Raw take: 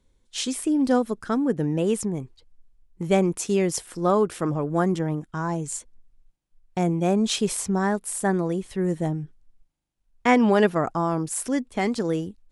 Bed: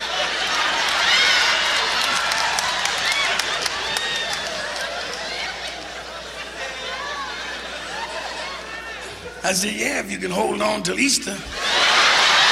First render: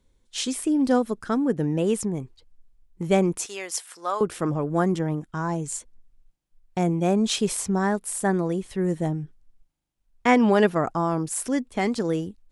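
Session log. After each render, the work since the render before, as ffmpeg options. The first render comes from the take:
-filter_complex "[0:a]asettb=1/sr,asplit=3[s0][s1][s2];[s0]atrim=end=3.464[s3];[s1]atrim=start=3.46:end=4.21,asetpts=PTS-STARTPTS,afade=t=in:d=0.004:c=qsin,afade=t=out:st=0.746:d=0.004:c=qsin,highpass=920[s4];[s2]atrim=start=4.206[s5];[s3][s4]acrossfade=d=0.004:c1=hsin:c2=qsin[s6];[s6][s5]acrossfade=d=0.004:c1=qsin:c2=hsin"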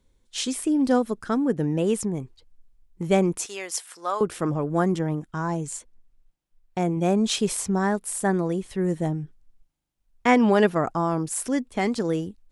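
-filter_complex "[0:a]asettb=1/sr,asplit=3[s0][s1][s2];[s0]atrim=end=5.694[s3];[s1]atrim=start=5.69:end=6.97,asetpts=PTS-STARTPTS,afade=t=in:d=0.004:c=qsin,afade=t=out:st=1.276:d=0.004:c=qsin,bass=f=250:g=-3,treble=f=4000:g=-3[s4];[s2]atrim=start=6.966[s5];[s3][s4]acrossfade=d=0.004:c1=hsin:c2=qsin[s6];[s6][s5]acrossfade=d=0.004:c1=qsin:c2=hsin"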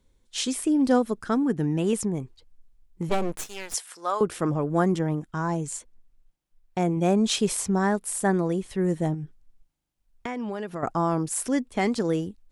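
-filter_complex "[0:a]asettb=1/sr,asplit=3[s0][s1][s2];[s0]atrim=end=1.434[s3];[s1]atrim=start=1.43:end=1.93,asetpts=PTS-STARTPTS,afade=t=in:d=0.004:c=qsin,afade=t=out:st=0.496:d=0.004:c=qsin,equalizer=f=540:t=o:w=0.29:g=-13[s4];[s2]atrim=start=1.926[s5];[s3][s4]acrossfade=d=0.004:c1=hsin:c2=qsin[s6];[s6][s5]acrossfade=d=0.004:c1=qsin:c2=hsin,asettb=1/sr,asplit=3[s7][s8][s9];[s7]atrim=end=3.094[s10];[s8]atrim=start=3.09:end=3.74,asetpts=PTS-STARTPTS,afade=t=in:d=0.004:c=qsin,afade=t=out:st=0.646:d=0.004:c=qsin,aeval=exprs='max(val(0),0)':c=same[s11];[s9]atrim=start=3.736[s12];[s10][s11]acrossfade=d=0.004:c1=hsin:c2=qsin[s13];[s13][s12]acrossfade=d=0.004:c1=qsin:c2=hsin,asettb=1/sr,asplit=3[s14][s15][s16];[s14]atrim=end=9.144[s17];[s15]atrim=start=9.14:end=10.83,asetpts=PTS-STARTPTS,afade=t=in:d=0.004:c=qsin,afade=t=out:st=1.686:d=0.004:c=qsin,acompressor=threshold=0.0355:ratio=6:attack=3.2:release=140:knee=1:detection=peak[s18];[s16]atrim=start=10.826[s19];[s17][s18]acrossfade=d=0.004:c1=hsin:c2=qsin[s20];[s20][s19]acrossfade=d=0.004:c1=qsin:c2=hsin"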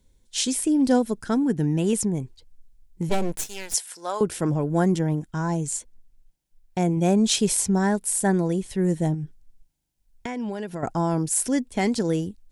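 -af "bass=f=250:g=4,treble=f=4000:g=6,bandreject=f=1200:w=5.4"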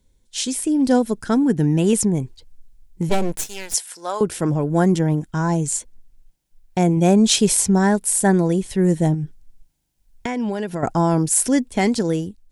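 -af "dynaudnorm=f=360:g=5:m=2.11"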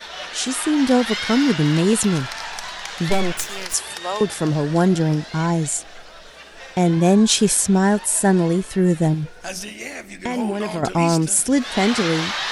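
-filter_complex "[1:a]volume=0.316[s0];[0:a][s0]amix=inputs=2:normalize=0"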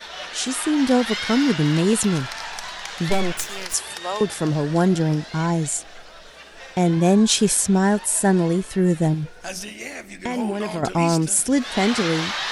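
-af "volume=0.841"

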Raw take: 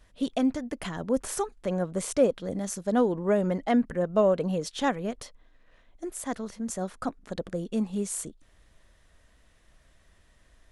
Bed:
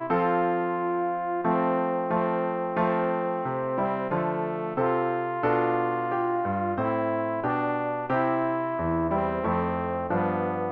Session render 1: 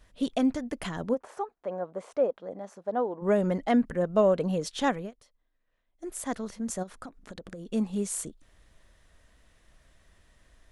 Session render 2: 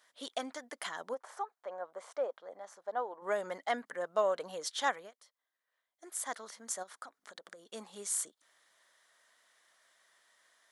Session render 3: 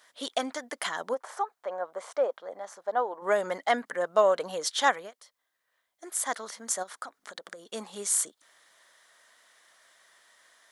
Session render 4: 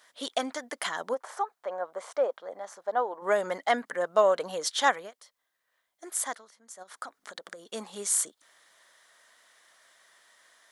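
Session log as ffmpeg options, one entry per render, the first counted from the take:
-filter_complex "[0:a]asplit=3[s0][s1][s2];[s0]afade=t=out:st=1.13:d=0.02[s3];[s1]bandpass=f=760:t=q:w=1.3,afade=t=in:st=1.13:d=0.02,afade=t=out:st=3.21:d=0.02[s4];[s2]afade=t=in:st=3.21:d=0.02[s5];[s3][s4][s5]amix=inputs=3:normalize=0,asplit=3[s6][s7][s8];[s6]afade=t=out:st=6.82:d=0.02[s9];[s7]acompressor=threshold=0.0141:ratio=16:attack=3.2:release=140:knee=1:detection=peak,afade=t=in:st=6.82:d=0.02,afade=t=out:st=7.66:d=0.02[s10];[s8]afade=t=in:st=7.66:d=0.02[s11];[s9][s10][s11]amix=inputs=3:normalize=0,asplit=3[s12][s13][s14];[s12]atrim=end=5.11,asetpts=PTS-STARTPTS,afade=t=out:st=4.93:d=0.18:c=qsin:silence=0.125893[s15];[s13]atrim=start=5.11:end=5.97,asetpts=PTS-STARTPTS,volume=0.126[s16];[s14]atrim=start=5.97,asetpts=PTS-STARTPTS,afade=t=in:d=0.18:c=qsin:silence=0.125893[s17];[s15][s16][s17]concat=n=3:v=0:a=1"
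-af "highpass=880,equalizer=f=2600:t=o:w=0.22:g=-10"
-af "volume=2.51"
-filter_complex "[0:a]asplit=3[s0][s1][s2];[s0]atrim=end=6.5,asetpts=PTS-STARTPTS,afade=t=out:st=6.24:d=0.26:c=qua:silence=0.141254[s3];[s1]atrim=start=6.5:end=6.72,asetpts=PTS-STARTPTS,volume=0.141[s4];[s2]atrim=start=6.72,asetpts=PTS-STARTPTS,afade=t=in:d=0.26:c=qua:silence=0.141254[s5];[s3][s4][s5]concat=n=3:v=0:a=1"

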